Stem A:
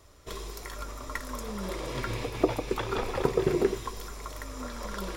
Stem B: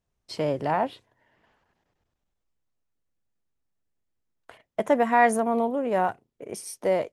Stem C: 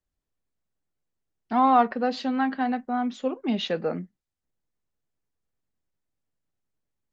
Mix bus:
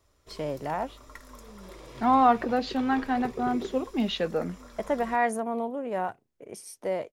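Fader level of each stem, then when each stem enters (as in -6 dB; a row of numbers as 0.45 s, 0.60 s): -11.0 dB, -6.0 dB, -1.0 dB; 0.00 s, 0.00 s, 0.50 s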